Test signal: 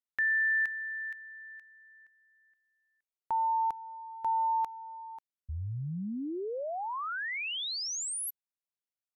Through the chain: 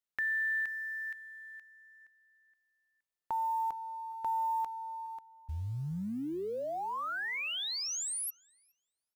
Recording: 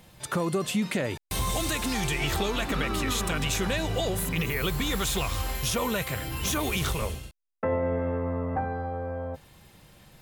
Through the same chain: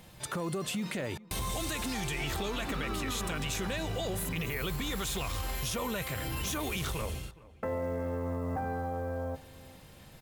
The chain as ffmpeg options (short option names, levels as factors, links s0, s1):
-filter_complex "[0:a]alimiter=limit=0.075:level=0:latency=1:release=129,acompressor=threshold=0.0251:ratio=4:attack=9.4:release=24:knee=6:detection=rms,acrusher=bits=8:mode=log:mix=0:aa=0.000001,asplit=2[s0][s1];[s1]adelay=416,lowpass=f=2000:p=1,volume=0.106,asplit=2[s2][s3];[s3]adelay=416,lowpass=f=2000:p=1,volume=0.33,asplit=2[s4][s5];[s5]adelay=416,lowpass=f=2000:p=1,volume=0.33[s6];[s2][s4][s6]amix=inputs=3:normalize=0[s7];[s0][s7]amix=inputs=2:normalize=0"